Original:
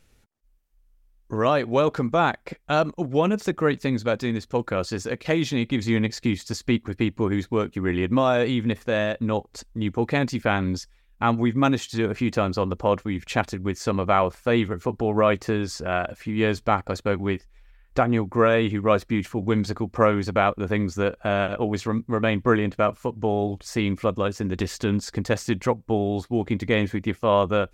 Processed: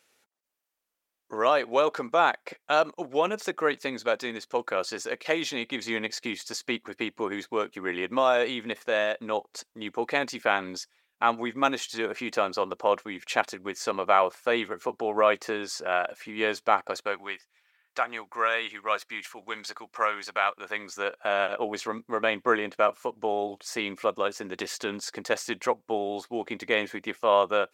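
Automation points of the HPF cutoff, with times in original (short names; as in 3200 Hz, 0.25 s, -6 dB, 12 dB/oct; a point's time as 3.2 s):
16.89 s 500 Hz
17.34 s 1100 Hz
20.51 s 1100 Hz
21.55 s 500 Hz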